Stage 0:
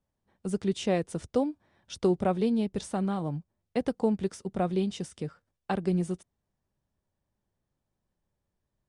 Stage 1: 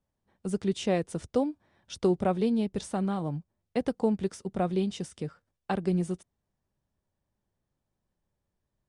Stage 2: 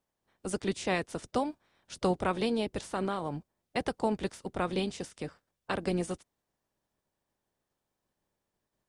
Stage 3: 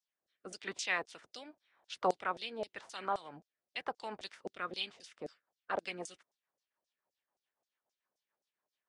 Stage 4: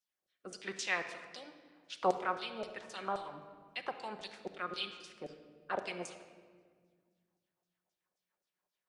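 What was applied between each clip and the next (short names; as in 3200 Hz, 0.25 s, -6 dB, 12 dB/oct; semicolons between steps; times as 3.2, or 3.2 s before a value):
nothing audible
spectral limiter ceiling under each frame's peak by 16 dB; gain -3 dB
LFO band-pass saw down 3.8 Hz 600–6400 Hz; rotary speaker horn 0.9 Hz, later 7 Hz, at 4.51; gain +6 dB
shoebox room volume 2300 m³, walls mixed, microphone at 0.98 m; gain -1 dB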